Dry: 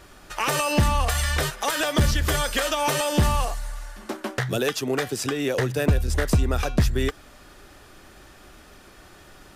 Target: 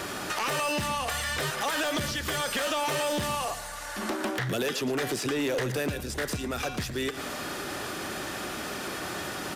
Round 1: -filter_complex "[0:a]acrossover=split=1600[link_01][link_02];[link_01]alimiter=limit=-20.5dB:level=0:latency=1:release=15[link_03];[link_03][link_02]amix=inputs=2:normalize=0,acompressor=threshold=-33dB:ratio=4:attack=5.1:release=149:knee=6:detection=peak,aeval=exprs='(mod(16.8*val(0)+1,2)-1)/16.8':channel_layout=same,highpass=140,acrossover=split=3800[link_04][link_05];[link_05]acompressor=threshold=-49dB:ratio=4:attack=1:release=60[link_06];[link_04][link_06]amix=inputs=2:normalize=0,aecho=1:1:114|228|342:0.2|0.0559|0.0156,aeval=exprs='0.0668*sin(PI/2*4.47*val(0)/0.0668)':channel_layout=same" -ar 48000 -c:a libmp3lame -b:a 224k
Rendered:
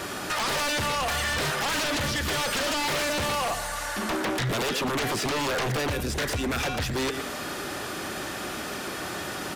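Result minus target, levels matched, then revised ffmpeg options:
downward compressor: peak gain reduction −8 dB
-filter_complex "[0:a]acrossover=split=1600[link_01][link_02];[link_01]alimiter=limit=-20.5dB:level=0:latency=1:release=15[link_03];[link_03][link_02]amix=inputs=2:normalize=0,acompressor=threshold=-43.5dB:ratio=4:attack=5.1:release=149:knee=6:detection=peak,aeval=exprs='(mod(16.8*val(0)+1,2)-1)/16.8':channel_layout=same,highpass=140,acrossover=split=3800[link_04][link_05];[link_05]acompressor=threshold=-49dB:ratio=4:attack=1:release=60[link_06];[link_04][link_06]amix=inputs=2:normalize=0,aecho=1:1:114|228|342:0.2|0.0559|0.0156,aeval=exprs='0.0668*sin(PI/2*4.47*val(0)/0.0668)':channel_layout=same" -ar 48000 -c:a libmp3lame -b:a 224k

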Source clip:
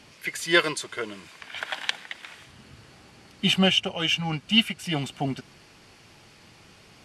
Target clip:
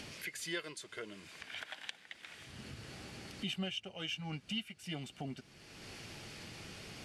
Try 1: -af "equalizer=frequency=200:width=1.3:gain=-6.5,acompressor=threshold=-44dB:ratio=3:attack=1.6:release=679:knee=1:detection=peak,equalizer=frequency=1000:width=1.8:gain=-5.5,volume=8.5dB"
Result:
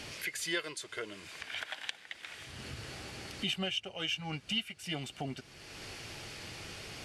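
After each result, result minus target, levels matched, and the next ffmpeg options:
downward compressor: peak gain reduction −6 dB; 250 Hz band −3.5 dB
-af "equalizer=frequency=200:width=1.3:gain=-6.5,acompressor=threshold=-52dB:ratio=3:attack=1.6:release=679:knee=1:detection=peak,equalizer=frequency=1000:width=1.8:gain=-5.5,volume=8.5dB"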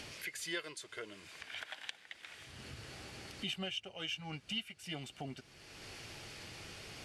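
250 Hz band −3.5 dB
-af "acompressor=threshold=-52dB:ratio=3:attack=1.6:release=679:knee=1:detection=peak,equalizer=frequency=1000:width=1.8:gain=-5.5,volume=8.5dB"

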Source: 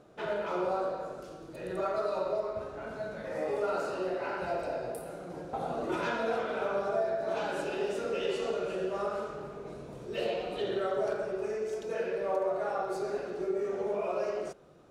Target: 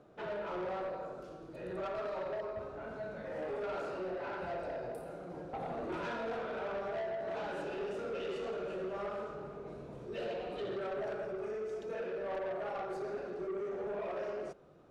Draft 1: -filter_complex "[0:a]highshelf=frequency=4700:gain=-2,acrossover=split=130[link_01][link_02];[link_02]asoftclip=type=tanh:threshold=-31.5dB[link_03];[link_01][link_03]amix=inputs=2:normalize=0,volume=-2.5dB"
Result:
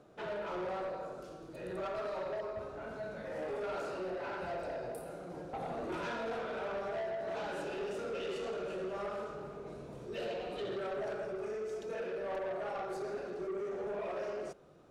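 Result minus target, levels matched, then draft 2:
8,000 Hz band +6.0 dB
-filter_complex "[0:a]highshelf=frequency=4700:gain=-11.5,acrossover=split=130[link_01][link_02];[link_02]asoftclip=type=tanh:threshold=-31.5dB[link_03];[link_01][link_03]amix=inputs=2:normalize=0,volume=-2.5dB"

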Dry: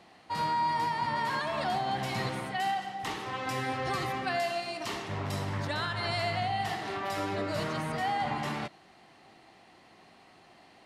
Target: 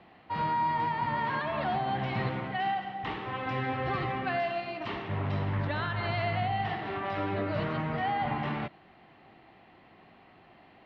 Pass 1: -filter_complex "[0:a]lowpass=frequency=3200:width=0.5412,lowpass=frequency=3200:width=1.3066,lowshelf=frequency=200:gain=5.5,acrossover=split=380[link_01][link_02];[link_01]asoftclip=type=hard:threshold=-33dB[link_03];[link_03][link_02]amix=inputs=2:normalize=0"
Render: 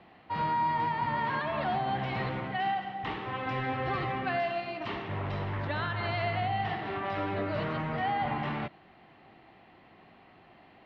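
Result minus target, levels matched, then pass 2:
hard clipping: distortion +31 dB
-filter_complex "[0:a]lowpass=frequency=3200:width=0.5412,lowpass=frequency=3200:width=1.3066,lowshelf=frequency=200:gain=5.5,acrossover=split=380[link_01][link_02];[link_01]asoftclip=type=hard:threshold=-23.5dB[link_03];[link_03][link_02]amix=inputs=2:normalize=0"

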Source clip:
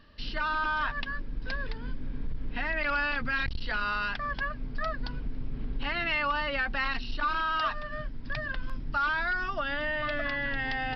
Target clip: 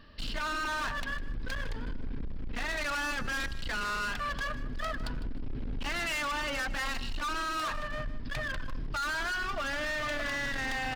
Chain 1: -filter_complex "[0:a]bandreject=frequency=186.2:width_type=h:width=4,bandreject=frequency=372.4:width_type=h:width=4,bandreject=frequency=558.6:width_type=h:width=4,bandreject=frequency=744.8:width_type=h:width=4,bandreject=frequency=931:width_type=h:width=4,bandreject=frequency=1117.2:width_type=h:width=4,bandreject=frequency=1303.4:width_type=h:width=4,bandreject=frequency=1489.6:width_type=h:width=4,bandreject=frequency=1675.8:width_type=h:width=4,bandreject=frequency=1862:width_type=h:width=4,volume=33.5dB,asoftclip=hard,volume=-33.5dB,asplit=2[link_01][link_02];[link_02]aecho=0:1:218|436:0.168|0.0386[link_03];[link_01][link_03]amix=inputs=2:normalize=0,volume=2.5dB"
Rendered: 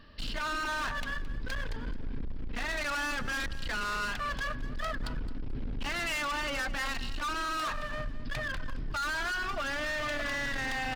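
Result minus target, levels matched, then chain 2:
echo 64 ms late
-filter_complex "[0:a]bandreject=frequency=186.2:width_type=h:width=4,bandreject=frequency=372.4:width_type=h:width=4,bandreject=frequency=558.6:width_type=h:width=4,bandreject=frequency=744.8:width_type=h:width=4,bandreject=frequency=931:width_type=h:width=4,bandreject=frequency=1117.2:width_type=h:width=4,bandreject=frequency=1303.4:width_type=h:width=4,bandreject=frequency=1489.6:width_type=h:width=4,bandreject=frequency=1675.8:width_type=h:width=4,bandreject=frequency=1862:width_type=h:width=4,volume=33.5dB,asoftclip=hard,volume=-33.5dB,asplit=2[link_01][link_02];[link_02]aecho=0:1:154|308:0.168|0.0386[link_03];[link_01][link_03]amix=inputs=2:normalize=0,volume=2.5dB"

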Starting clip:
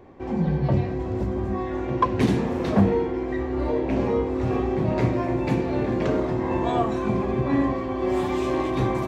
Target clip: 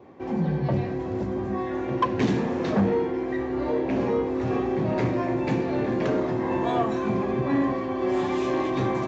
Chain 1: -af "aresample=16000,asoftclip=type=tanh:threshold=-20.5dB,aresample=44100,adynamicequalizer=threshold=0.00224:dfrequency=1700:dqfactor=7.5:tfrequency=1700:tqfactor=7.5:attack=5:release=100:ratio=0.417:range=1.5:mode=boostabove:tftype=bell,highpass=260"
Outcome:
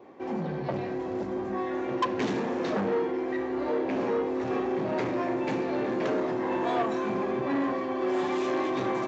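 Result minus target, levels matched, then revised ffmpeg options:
125 Hz band −7.5 dB; soft clipping: distortion +8 dB
-af "aresample=16000,asoftclip=type=tanh:threshold=-13.5dB,aresample=44100,adynamicequalizer=threshold=0.00224:dfrequency=1700:dqfactor=7.5:tfrequency=1700:tqfactor=7.5:attack=5:release=100:ratio=0.417:range=1.5:mode=boostabove:tftype=bell,highpass=120"

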